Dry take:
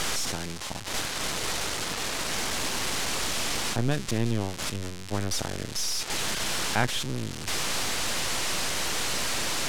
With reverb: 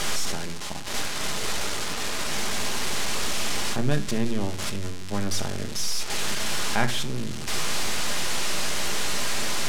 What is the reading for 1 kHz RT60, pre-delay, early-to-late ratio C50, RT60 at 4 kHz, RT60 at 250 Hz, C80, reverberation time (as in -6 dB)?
0.60 s, 5 ms, 13.5 dB, 0.40 s, 0.85 s, 17.5 dB, 0.60 s